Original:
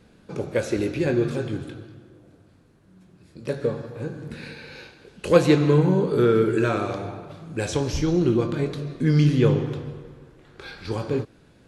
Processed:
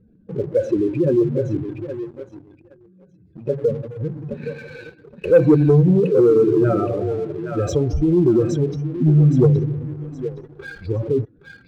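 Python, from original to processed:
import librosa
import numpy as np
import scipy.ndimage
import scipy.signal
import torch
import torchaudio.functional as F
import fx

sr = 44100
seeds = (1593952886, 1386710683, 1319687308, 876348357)

y = fx.spec_expand(x, sr, power=2.4)
y = fx.echo_thinned(y, sr, ms=818, feedback_pct=33, hz=820.0, wet_db=-4.5)
y = fx.leveller(y, sr, passes=1)
y = y * librosa.db_to_amplitude(2.0)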